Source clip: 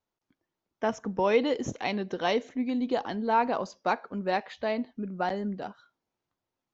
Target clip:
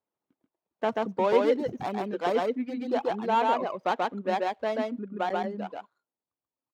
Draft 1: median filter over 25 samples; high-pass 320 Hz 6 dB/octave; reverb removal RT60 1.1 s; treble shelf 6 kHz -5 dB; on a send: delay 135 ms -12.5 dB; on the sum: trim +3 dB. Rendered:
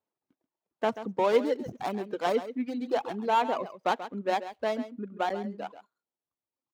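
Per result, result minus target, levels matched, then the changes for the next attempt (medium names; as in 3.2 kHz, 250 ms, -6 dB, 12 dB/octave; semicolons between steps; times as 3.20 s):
echo-to-direct -11 dB; 8 kHz band +4.5 dB
change: delay 135 ms -1.5 dB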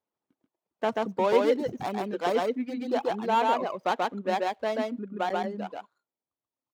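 8 kHz band +4.5 dB
change: treble shelf 6 kHz -13.5 dB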